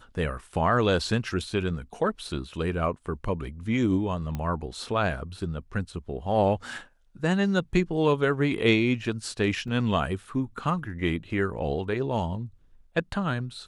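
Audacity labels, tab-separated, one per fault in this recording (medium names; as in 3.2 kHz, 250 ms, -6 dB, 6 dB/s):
4.350000	4.350000	pop -19 dBFS
9.680000	9.680000	dropout 2.8 ms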